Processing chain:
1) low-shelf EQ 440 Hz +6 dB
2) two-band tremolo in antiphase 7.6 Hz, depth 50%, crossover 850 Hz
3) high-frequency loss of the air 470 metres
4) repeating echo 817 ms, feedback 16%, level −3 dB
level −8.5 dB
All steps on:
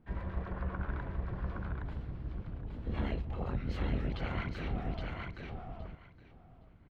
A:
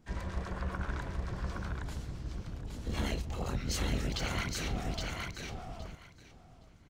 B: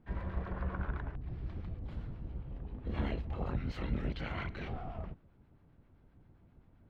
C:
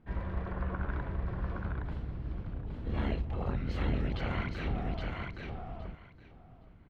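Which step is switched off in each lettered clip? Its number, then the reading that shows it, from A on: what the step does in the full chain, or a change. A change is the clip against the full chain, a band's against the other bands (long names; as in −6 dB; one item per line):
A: 3, 4 kHz band +10.5 dB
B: 4, change in integrated loudness −1.0 LU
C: 2, change in integrated loudness +2.5 LU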